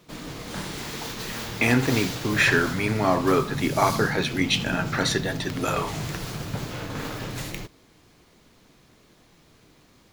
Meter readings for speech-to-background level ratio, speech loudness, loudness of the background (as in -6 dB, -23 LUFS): 8.0 dB, -24.0 LUFS, -32.0 LUFS